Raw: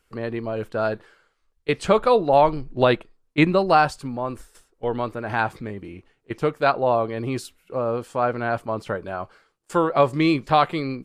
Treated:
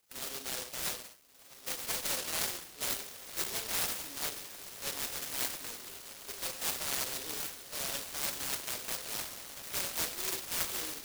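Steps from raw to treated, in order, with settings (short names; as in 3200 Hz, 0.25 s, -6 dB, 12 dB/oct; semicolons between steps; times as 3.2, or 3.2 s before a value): nonlinear frequency compression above 1700 Hz 4:1; in parallel at -12 dB: bit-crush 6-bit; on the sum: HPF 850 Hz 12 dB/oct; reverse; compressor 4:1, threshold -30 dBFS, peak gain reduction 14.5 dB; reverse; diffused feedback echo 1.464 s, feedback 58%, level -10 dB; non-linear reverb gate 0.25 s falling, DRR 4 dB; pitch shift +2.5 st; noise-modulated delay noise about 4400 Hz, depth 0.42 ms; gain -4.5 dB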